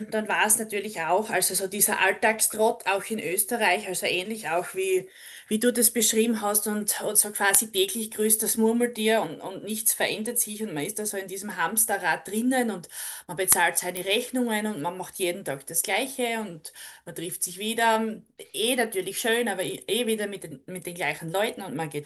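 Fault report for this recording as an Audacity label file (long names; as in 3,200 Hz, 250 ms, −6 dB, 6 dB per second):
13.970000	13.970000	click −13 dBFS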